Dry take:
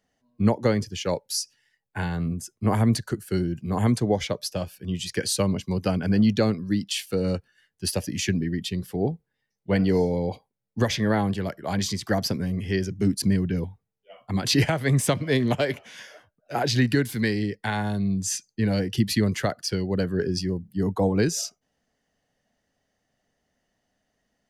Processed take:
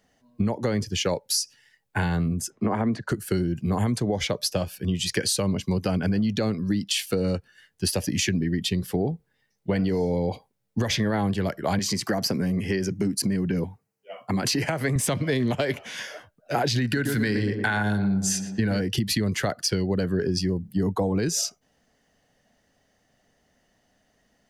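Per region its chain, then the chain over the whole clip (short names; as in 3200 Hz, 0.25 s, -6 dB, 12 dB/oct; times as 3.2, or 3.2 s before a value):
2.5–3.09 LPF 6600 Hz + three-band isolator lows -14 dB, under 170 Hz, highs -15 dB, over 2200 Hz + three-band squash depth 40%
11.79–14.96 HPF 140 Hz + bell 3500 Hz -11 dB 0.26 oct + compressor 2.5:1, threshold -26 dBFS
16.84–18.81 bell 1500 Hz +9 dB 0.29 oct + tape echo 0.117 s, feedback 67%, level -7 dB, low-pass 1200 Hz
whole clip: limiter -16 dBFS; compressor 4:1, threshold -30 dBFS; gain +8 dB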